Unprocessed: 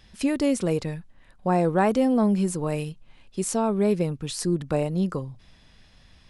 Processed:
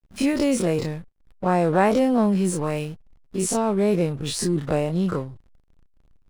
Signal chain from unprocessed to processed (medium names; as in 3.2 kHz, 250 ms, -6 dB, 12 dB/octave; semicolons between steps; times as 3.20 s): every event in the spectrogram widened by 60 ms; hysteresis with a dead band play -36 dBFS